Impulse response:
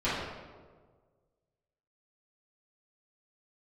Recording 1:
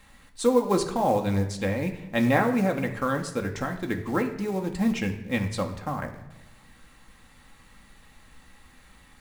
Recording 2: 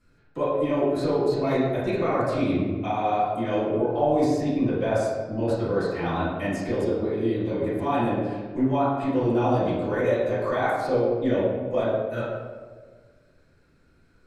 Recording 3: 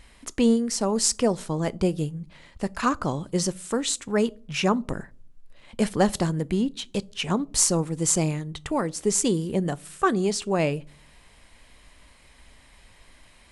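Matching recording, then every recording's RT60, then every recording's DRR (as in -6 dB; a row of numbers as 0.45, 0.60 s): 2; 1.0, 1.6, 0.55 s; 3.0, -13.5, 20.5 dB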